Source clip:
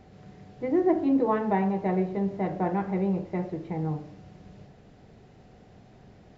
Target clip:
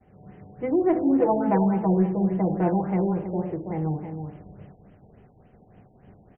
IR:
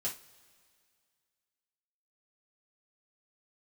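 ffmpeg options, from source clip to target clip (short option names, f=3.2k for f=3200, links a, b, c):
-filter_complex "[0:a]asettb=1/sr,asplit=3[a][b][c];[a]atrim=end=1.204[d];[b]atrim=start=1.2:end=2.74,asetpts=PTS-STARTPTS,afade=t=in:d=0.004:c=qsin,afade=t=out:st=1.536:d=0.004:c=qsin,aecho=1:1:6:0.72,atrim=end_sample=67914[e];[c]atrim=start=2.736[f];[d][e]acrossfade=d=0.004:c1=hsin:c2=qsin[g];[g][f]acrossfade=d=0.004:c1=qsin:c2=hsin,asplit=2[h][i];[i]adelay=326.5,volume=-8dB,highshelf=f=4k:g=-7.35[j];[h][j]amix=inputs=2:normalize=0,agate=range=-33dB:threshold=-46dB:ratio=3:detection=peak,asplit=2[k][l];[l]asoftclip=type=tanh:threshold=-26.5dB,volume=-7dB[m];[k][m]amix=inputs=2:normalize=0,afftfilt=real='re*lt(b*sr/1024,920*pow(3300/920,0.5+0.5*sin(2*PI*3.5*pts/sr)))':imag='im*lt(b*sr/1024,920*pow(3300/920,0.5+0.5*sin(2*PI*3.5*pts/sr)))':win_size=1024:overlap=0.75"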